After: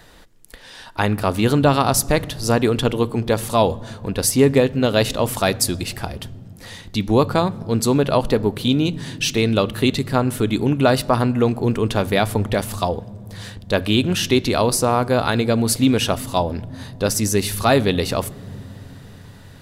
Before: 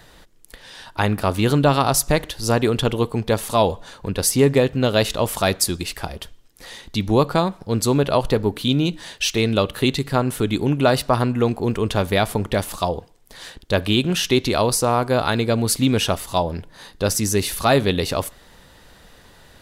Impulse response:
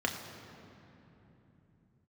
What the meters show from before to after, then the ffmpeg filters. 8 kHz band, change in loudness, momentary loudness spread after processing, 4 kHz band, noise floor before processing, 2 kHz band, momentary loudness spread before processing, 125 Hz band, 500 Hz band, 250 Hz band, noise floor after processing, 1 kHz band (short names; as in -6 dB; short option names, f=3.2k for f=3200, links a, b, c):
+0.5 dB, +1.0 dB, 14 LU, 0.0 dB, -50 dBFS, +0.5 dB, 10 LU, +1.0 dB, +1.0 dB, +2.0 dB, -42 dBFS, +0.5 dB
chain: -filter_complex "[0:a]asplit=2[a][b];[1:a]atrim=start_sample=2205,lowshelf=f=290:g=12[c];[b][c]afir=irnorm=-1:irlink=0,volume=-26.5dB[d];[a][d]amix=inputs=2:normalize=0"